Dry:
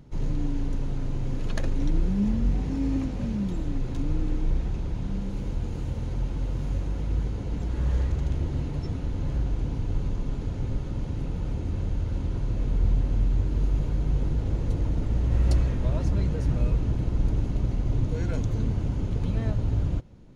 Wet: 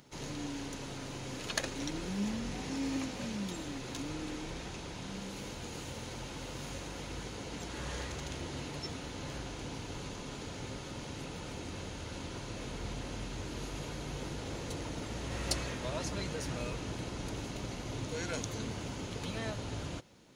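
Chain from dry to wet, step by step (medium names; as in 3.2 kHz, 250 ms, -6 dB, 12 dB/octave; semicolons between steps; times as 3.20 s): high-pass 670 Hz 6 dB/octave; treble shelf 2.5 kHz +9.5 dB; trim +1 dB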